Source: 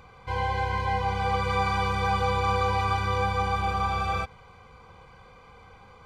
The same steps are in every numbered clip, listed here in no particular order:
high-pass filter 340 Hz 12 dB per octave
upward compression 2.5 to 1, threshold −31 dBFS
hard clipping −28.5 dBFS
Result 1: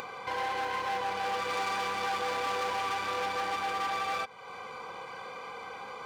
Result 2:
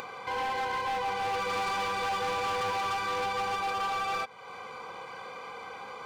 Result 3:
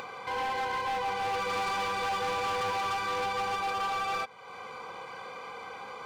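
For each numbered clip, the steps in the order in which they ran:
hard clipping, then high-pass filter, then upward compression
high-pass filter, then hard clipping, then upward compression
high-pass filter, then upward compression, then hard clipping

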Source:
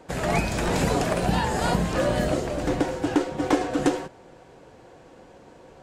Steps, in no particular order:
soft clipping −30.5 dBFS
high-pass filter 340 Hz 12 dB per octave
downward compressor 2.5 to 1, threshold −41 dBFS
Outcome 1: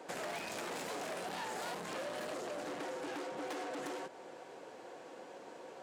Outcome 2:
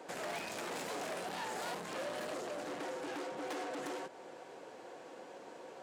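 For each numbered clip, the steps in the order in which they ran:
soft clipping, then high-pass filter, then downward compressor
soft clipping, then downward compressor, then high-pass filter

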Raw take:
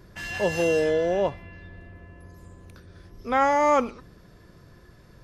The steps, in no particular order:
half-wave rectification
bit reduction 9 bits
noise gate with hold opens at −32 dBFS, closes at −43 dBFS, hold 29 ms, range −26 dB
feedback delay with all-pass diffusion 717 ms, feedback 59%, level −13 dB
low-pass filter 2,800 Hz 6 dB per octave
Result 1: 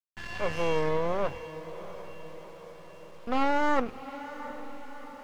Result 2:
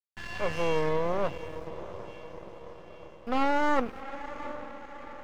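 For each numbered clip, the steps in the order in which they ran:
half-wave rectification, then noise gate with hold, then feedback delay with all-pass diffusion, then bit reduction, then low-pass filter
noise gate with hold, then bit reduction, then feedback delay with all-pass diffusion, then half-wave rectification, then low-pass filter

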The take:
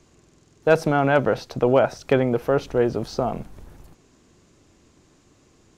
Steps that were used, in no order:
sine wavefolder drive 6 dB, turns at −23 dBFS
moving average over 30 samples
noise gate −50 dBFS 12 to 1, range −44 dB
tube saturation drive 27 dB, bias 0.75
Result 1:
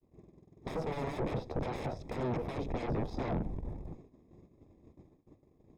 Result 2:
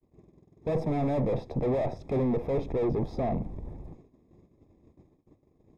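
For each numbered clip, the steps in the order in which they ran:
sine wavefolder, then moving average, then tube saturation, then noise gate
tube saturation, then sine wavefolder, then moving average, then noise gate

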